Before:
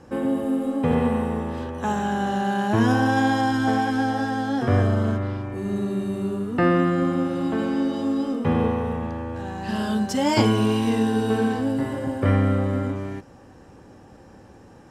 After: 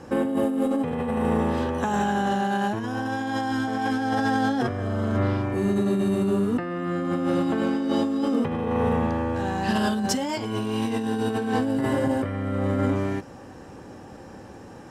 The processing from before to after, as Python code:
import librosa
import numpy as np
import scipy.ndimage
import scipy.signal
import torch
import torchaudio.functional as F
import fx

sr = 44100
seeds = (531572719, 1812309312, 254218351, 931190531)

y = fx.low_shelf(x, sr, hz=88.0, db=-7.0)
y = fx.over_compress(y, sr, threshold_db=-27.0, ratio=-1.0)
y = y * librosa.db_to_amplitude(2.5)